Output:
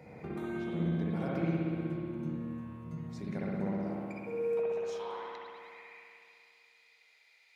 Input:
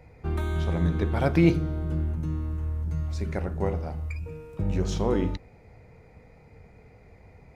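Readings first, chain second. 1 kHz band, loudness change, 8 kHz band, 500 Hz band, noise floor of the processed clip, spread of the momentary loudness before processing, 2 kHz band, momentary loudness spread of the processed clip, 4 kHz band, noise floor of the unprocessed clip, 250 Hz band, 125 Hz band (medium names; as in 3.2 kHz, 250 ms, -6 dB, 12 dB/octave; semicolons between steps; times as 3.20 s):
-7.0 dB, -8.5 dB, no reading, -4.5 dB, -65 dBFS, 11 LU, -8.0 dB, 16 LU, -10.5 dB, -54 dBFS, -6.5 dB, -11.5 dB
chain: hum notches 60/120/180/240/300 Hz; compression 4:1, threshold -42 dBFS, peak gain reduction 22.5 dB; high-pass sweep 190 Hz -> 3.7 kHz, 3.57–6.29 s; spring tank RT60 2.5 s, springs 60 ms, chirp 55 ms, DRR -6 dB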